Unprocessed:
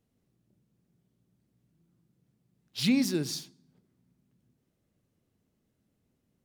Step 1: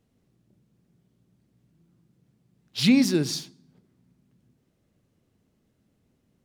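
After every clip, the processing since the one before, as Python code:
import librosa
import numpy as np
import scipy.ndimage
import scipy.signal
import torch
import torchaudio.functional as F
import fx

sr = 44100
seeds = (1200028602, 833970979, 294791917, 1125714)

y = fx.high_shelf(x, sr, hz=9800.0, db=-7.5)
y = y * 10.0 ** (6.5 / 20.0)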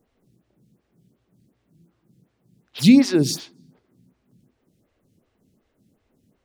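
y = fx.stagger_phaser(x, sr, hz=2.7)
y = y * 10.0 ** (7.5 / 20.0)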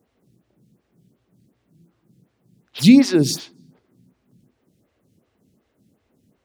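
y = scipy.signal.sosfilt(scipy.signal.butter(2, 56.0, 'highpass', fs=sr, output='sos'), x)
y = y * 10.0 ** (2.0 / 20.0)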